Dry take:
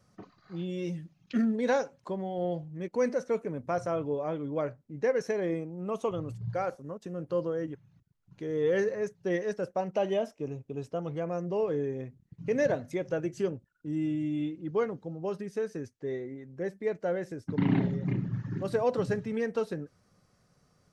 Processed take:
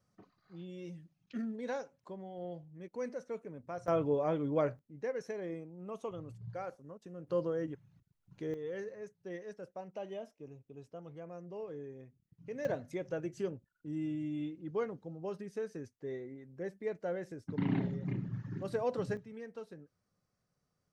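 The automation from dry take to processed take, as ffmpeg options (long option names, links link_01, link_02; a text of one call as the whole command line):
ffmpeg -i in.wav -af "asetnsamples=nb_out_samples=441:pad=0,asendcmd='3.88 volume volume 0.5dB;4.79 volume volume -10dB;7.27 volume volume -3dB;8.54 volume volume -14dB;12.65 volume volume -6.5dB;19.17 volume volume -15.5dB',volume=-11.5dB" out.wav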